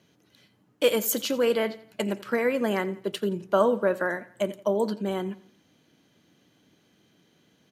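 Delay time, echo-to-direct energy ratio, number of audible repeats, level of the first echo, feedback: 86 ms, -18.0 dB, 3, -19.0 dB, 42%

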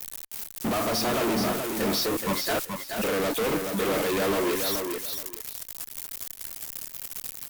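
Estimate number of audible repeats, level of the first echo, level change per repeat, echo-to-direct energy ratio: 2, -5.5 dB, -14.5 dB, -5.5 dB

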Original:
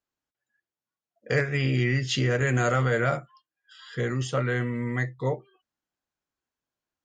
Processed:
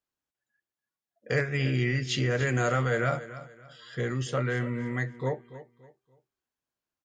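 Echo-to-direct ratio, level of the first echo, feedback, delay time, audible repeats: -14.5 dB, -15.0 dB, 31%, 0.286 s, 2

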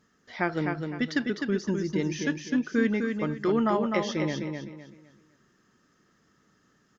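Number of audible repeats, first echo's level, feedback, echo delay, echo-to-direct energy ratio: 3, -5.0 dB, 30%, 0.255 s, -4.5 dB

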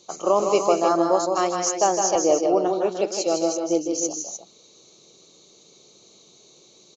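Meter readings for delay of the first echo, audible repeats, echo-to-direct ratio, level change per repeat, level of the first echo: 0.159 s, 3, -3.0 dB, no steady repeat, -5.5 dB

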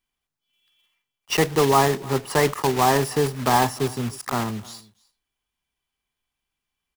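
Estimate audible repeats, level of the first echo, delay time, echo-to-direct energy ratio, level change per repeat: 1, -23.5 dB, 0.304 s, -23.5 dB, no steady repeat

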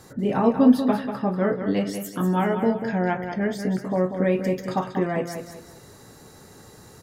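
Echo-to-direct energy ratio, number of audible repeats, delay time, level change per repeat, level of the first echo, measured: -7.5 dB, 3, 0.191 s, -9.5 dB, -8.0 dB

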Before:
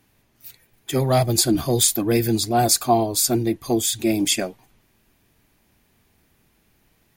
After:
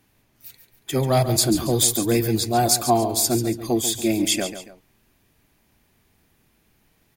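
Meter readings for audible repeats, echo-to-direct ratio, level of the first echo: 2, -10.5 dB, -11.0 dB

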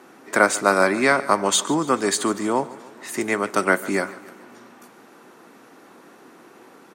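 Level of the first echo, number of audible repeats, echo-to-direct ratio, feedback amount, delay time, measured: -19.0 dB, 4, -17.5 dB, 55%, 0.145 s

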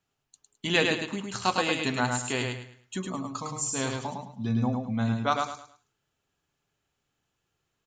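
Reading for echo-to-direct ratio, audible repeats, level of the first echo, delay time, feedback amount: -3.5 dB, 3, -4.0 dB, 0.106 s, 30%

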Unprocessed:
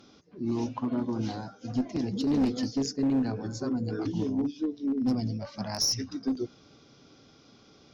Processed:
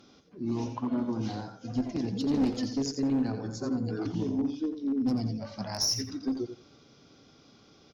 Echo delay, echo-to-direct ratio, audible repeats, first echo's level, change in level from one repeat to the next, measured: 87 ms, -9.0 dB, 2, -9.0 dB, -15.5 dB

